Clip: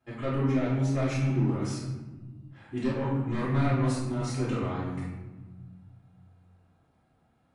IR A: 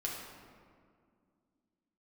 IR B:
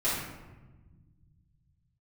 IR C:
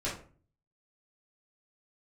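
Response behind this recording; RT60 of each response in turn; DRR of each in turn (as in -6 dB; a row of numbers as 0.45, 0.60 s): B; 2.1, 1.2, 0.40 s; -3.0, -11.0, -9.0 dB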